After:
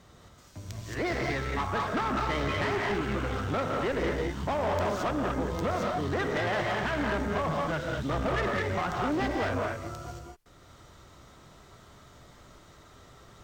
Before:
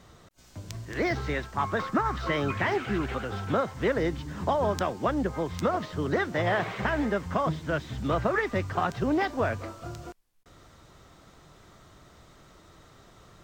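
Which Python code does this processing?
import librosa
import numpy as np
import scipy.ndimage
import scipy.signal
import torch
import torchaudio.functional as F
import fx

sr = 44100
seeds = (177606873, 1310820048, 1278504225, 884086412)

y = fx.rev_gated(x, sr, seeds[0], gate_ms=250, shape='rising', drr_db=0.0)
y = fx.tube_stage(y, sr, drive_db=24.0, bias=0.5)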